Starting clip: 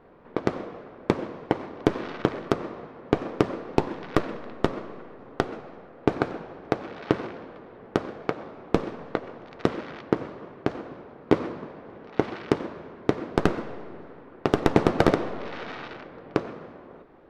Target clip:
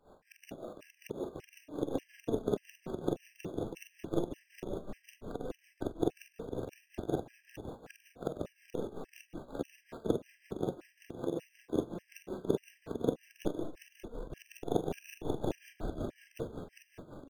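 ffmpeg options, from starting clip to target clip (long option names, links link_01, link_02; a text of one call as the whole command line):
ffmpeg -i in.wav -filter_complex "[0:a]afftfilt=real='re':imag='-im':win_size=4096:overlap=0.75,acrossover=split=580[link_01][link_02];[link_01]adynamicequalizer=threshold=0.00178:dfrequency=140:dqfactor=8:tfrequency=140:tqfactor=8:attack=5:release=100:ratio=0.375:range=2:mode=boostabove:tftype=bell[link_03];[link_02]acompressor=threshold=-48dB:ratio=10[link_04];[link_03][link_04]amix=inputs=2:normalize=0,asplit=8[link_05][link_06][link_07][link_08][link_09][link_10][link_11][link_12];[link_06]adelay=458,afreqshift=-32,volume=-3.5dB[link_13];[link_07]adelay=916,afreqshift=-64,volume=-9.2dB[link_14];[link_08]adelay=1374,afreqshift=-96,volume=-14.9dB[link_15];[link_09]adelay=1832,afreqshift=-128,volume=-20.5dB[link_16];[link_10]adelay=2290,afreqshift=-160,volume=-26.2dB[link_17];[link_11]adelay=2748,afreqshift=-192,volume=-31.9dB[link_18];[link_12]adelay=3206,afreqshift=-224,volume=-37.6dB[link_19];[link_05][link_13][link_14][link_15][link_16][link_17][link_18][link_19]amix=inputs=8:normalize=0,asplit=2[link_20][link_21];[link_21]acrusher=samples=15:mix=1:aa=0.000001,volume=-5dB[link_22];[link_20][link_22]amix=inputs=2:normalize=0,bandreject=frequency=60:width_type=h:width=6,bandreject=frequency=120:width_type=h:width=6,bandreject=frequency=180:width_type=h:width=6,bandreject=frequency=240:width_type=h:width=6,flanger=delay=1.2:depth=5.1:regen=65:speed=0.13:shape=sinusoidal,asetrate=46722,aresample=44100,atempo=0.943874,acrossover=split=340[link_23][link_24];[link_23]acompressor=threshold=-32dB:ratio=8[link_25];[link_25][link_24]amix=inputs=2:normalize=0,equalizer=frequency=600:width=2.9:gain=2.5,tremolo=f=5.4:d=0.77,afftfilt=real='re*gt(sin(2*PI*1.7*pts/sr)*(1-2*mod(floor(b*sr/1024/1600),2)),0)':imag='im*gt(sin(2*PI*1.7*pts/sr)*(1-2*mod(floor(b*sr/1024/1600),2)),0)':win_size=1024:overlap=0.75,volume=2dB" out.wav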